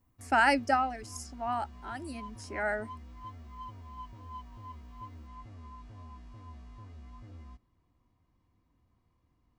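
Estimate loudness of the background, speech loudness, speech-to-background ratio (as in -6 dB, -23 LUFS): -48.5 LUFS, -29.5 LUFS, 19.0 dB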